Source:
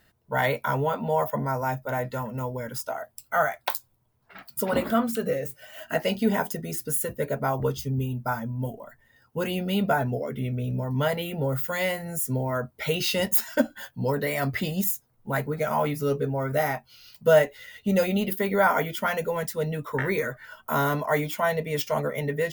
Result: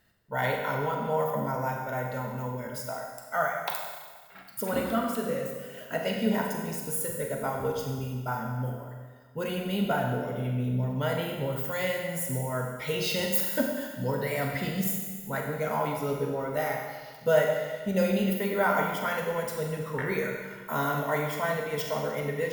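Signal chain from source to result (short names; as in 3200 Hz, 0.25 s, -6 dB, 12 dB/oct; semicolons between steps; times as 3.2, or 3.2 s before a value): Schroeder reverb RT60 1.5 s, combs from 32 ms, DRR 1 dB; gain -5.5 dB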